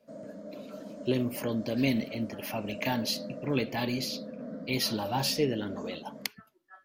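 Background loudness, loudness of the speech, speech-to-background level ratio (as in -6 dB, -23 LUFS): -42.5 LUFS, -32.0 LUFS, 10.5 dB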